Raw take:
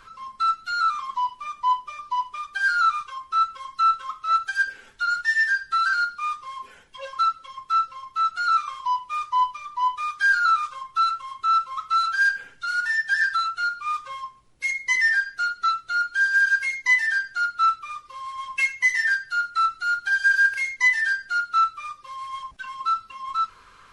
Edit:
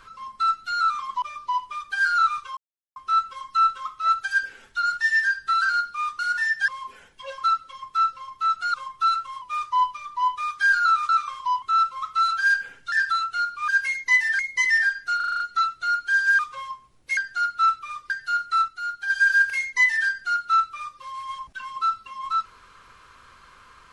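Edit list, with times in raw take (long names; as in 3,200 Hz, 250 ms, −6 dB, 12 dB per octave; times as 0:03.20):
0:01.22–0:01.85: remove
0:03.20: splice in silence 0.39 s
0:08.49–0:09.02: swap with 0:10.69–0:11.37
0:12.67–0:13.16: move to 0:06.43
0:13.92–0:14.70: swap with 0:16.46–0:17.17
0:15.47: stutter 0.04 s, 7 plays
0:18.10–0:19.14: remove
0:19.72–0:20.14: clip gain −6 dB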